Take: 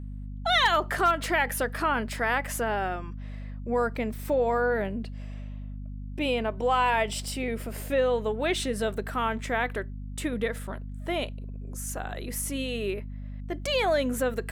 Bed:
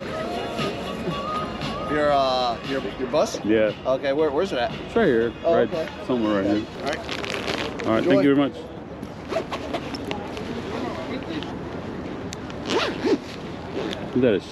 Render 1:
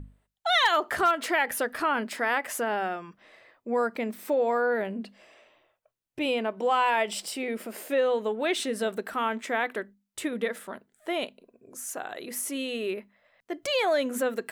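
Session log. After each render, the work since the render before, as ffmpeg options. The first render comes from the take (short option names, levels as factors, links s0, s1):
-af "bandreject=f=50:t=h:w=6,bandreject=f=100:t=h:w=6,bandreject=f=150:t=h:w=6,bandreject=f=200:t=h:w=6,bandreject=f=250:t=h:w=6"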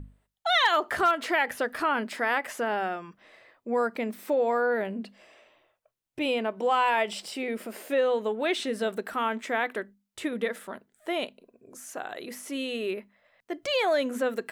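-filter_complex "[0:a]acrossover=split=5500[s0][s1];[s1]acompressor=threshold=0.00631:ratio=4:attack=1:release=60[s2];[s0][s2]amix=inputs=2:normalize=0"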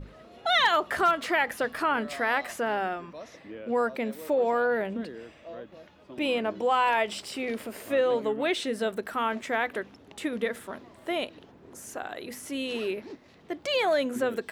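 -filter_complex "[1:a]volume=0.075[s0];[0:a][s0]amix=inputs=2:normalize=0"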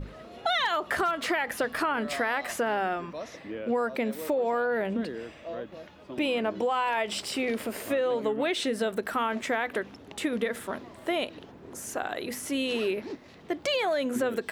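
-filter_complex "[0:a]asplit=2[s0][s1];[s1]alimiter=limit=0.0891:level=0:latency=1,volume=0.708[s2];[s0][s2]amix=inputs=2:normalize=0,acompressor=threshold=0.0631:ratio=6"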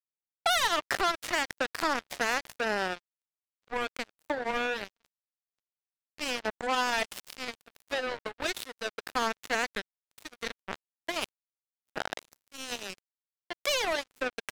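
-filter_complex "[0:a]acrossover=split=510[s0][s1];[s0]asoftclip=type=tanh:threshold=0.0211[s2];[s2][s1]amix=inputs=2:normalize=0,acrusher=bits=3:mix=0:aa=0.5"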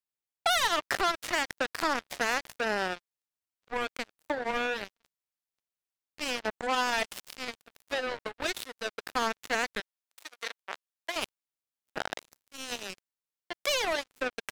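-filter_complex "[0:a]asettb=1/sr,asplit=3[s0][s1][s2];[s0]atrim=end=9.804[s3];[s1]atrim=start=9.8:end=11.16,asetpts=PTS-STARTPTS,afade=t=in:d=0.004:c=qsin,afade=t=out:st=1.356:d=0.004:c=qsin,highpass=560[s4];[s2]atrim=start=11.156[s5];[s3][s4]acrossfade=d=0.004:c1=hsin:c2=qsin[s6];[s6][s5]acrossfade=d=0.004:c1=qsin:c2=hsin"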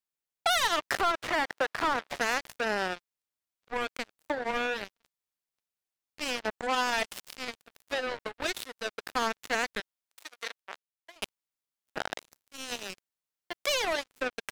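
-filter_complex "[0:a]asettb=1/sr,asplit=3[s0][s1][s2];[s0]atrim=end=1.014[s3];[s1]atrim=start=1.01:end=2.16,asetpts=PTS-STARTPTS,afade=t=in:d=0.004:c=qsin,afade=t=out:st=1.146:d=0.004:c=qsin,asplit=2[s4][s5];[s5]highpass=f=720:p=1,volume=12.6,asoftclip=type=tanh:threshold=0.15[s6];[s4][s6]amix=inputs=2:normalize=0,lowpass=f=1500:p=1,volume=0.501[s7];[s2]atrim=start=2.156[s8];[s3][s7]acrossfade=d=0.004:c1=hsin:c2=qsin[s9];[s9][s8]acrossfade=d=0.004:c1=qsin:c2=hsin,asettb=1/sr,asplit=3[s10][s11][s12];[s10]atrim=end=12.744[s13];[s11]atrim=start=12.74:end=13.61,asetpts=PTS-STARTPTS,afade=t=in:d=0.004:c=qsin,afade=t=out:st=0.866:d=0.004:c=qsin,acrusher=bits=5:mode=log:mix=0:aa=0.000001[s14];[s12]atrim=start=13.606[s15];[s13][s14]acrossfade=d=0.004:c1=hsin:c2=qsin[s16];[s16][s15]acrossfade=d=0.004:c1=qsin:c2=hsin,asplit=2[s17][s18];[s17]atrim=end=11.22,asetpts=PTS-STARTPTS,afade=t=out:st=10.4:d=0.82[s19];[s18]atrim=start=11.22,asetpts=PTS-STARTPTS,afade=t=in:d=0.004:c=hsin[s20];[s19][s20]concat=n=2:v=0:a=1"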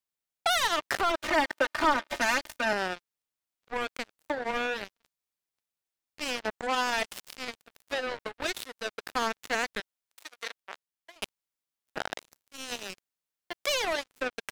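-filter_complex "[0:a]asettb=1/sr,asplit=3[s0][s1][s2];[s0]atrim=end=1.094[s3];[s1]atrim=start=1.09:end=2.73,asetpts=PTS-STARTPTS,afade=t=in:d=0.004:c=qsin,afade=t=out:st=1.636:d=0.004:c=qsin,aecho=1:1:3.3:0.95,atrim=end_sample=72324[s4];[s2]atrim=start=2.726[s5];[s3][s4]acrossfade=d=0.004:c1=hsin:c2=qsin[s6];[s6][s5]acrossfade=d=0.004:c1=qsin:c2=hsin"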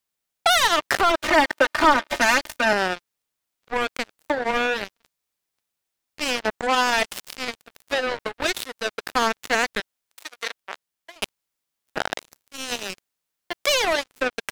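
-af "volume=2.51"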